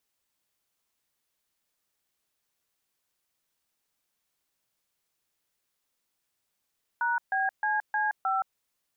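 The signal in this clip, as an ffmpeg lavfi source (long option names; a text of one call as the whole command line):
ffmpeg -f lavfi -i "aevalsrc='0.0447*clip(min(mod(t,0.31),0.171-mod(t,0.31))/0.002,0,1)*(eq(floor(t/0.31),0)*(sin(2*PI*941*mod(t,0.31))+sin(2*PI*1477*mod(t,0.31)))+eq(floor(t/0.31),1)*(sin(2*PI*770*mod(t,0.31))+sin(2*PI*1633*mod(t,0.31)))+eq(floor(t/0.31),2)*(sin(2*PI*852*mod(t,0.31))+sin(2*PI*1633*mod(t,0.31)))+eq(floor(t/0.31),3)*(sin(2*PI*852*mod(t,0.31))+sin(2*PI*1633*mod(t,0.31)))+eq(floor(t/0.31),4)*(sin(2*PI*770*mod(t,0.31))+sin(2*PI*1336*mod(t,0.31))))':duration=1.55:sample_rate=44100" out.wav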